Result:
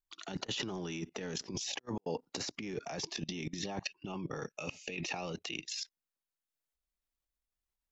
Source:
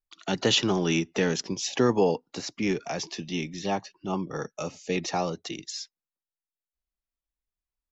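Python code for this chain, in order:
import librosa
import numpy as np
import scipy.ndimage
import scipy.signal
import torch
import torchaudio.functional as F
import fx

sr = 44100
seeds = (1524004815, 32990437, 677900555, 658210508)

y = fx.peak_eq(x, sr, hz=2600.0, db=12.5, octaves=0.46, at=(3.79, 5.82))
y = fx.level_steps(y, sr, step_db=20)
y = fx.transient(y, sr, attack_db=2, sustain_db=-4)
y = fx.over_compress(y, sr, threshold_db=-43.0, ratio=-0.5)
y = y * librosa.db_to_amplitude(2.5)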